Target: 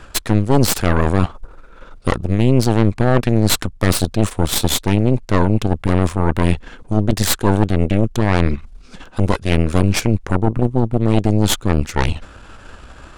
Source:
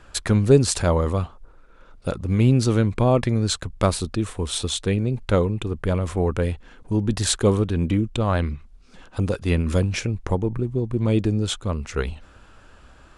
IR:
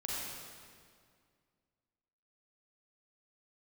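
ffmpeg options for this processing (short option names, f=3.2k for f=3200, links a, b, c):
-af "areverse,acompressor=threshold=-28dB:ratio=4,areverse,aeval=exprs='0.282*(cos(1*acos(clip(val(0)/0.282,-1,1)))-cos(1*PI/2))+0.0891*(cos(4*acos(clip(val(0)/0.282,-1,1)))-cos(4*PI/2))+0.0447*(cos(5*acos(clip(val(0)/0.282,-1,1)))-cos(5*PI/2))+0.112*(cos(8*acos(clip(val(0)/0.282,-1,1)))-cos(8*PI/2))':c=same,volume=5dB"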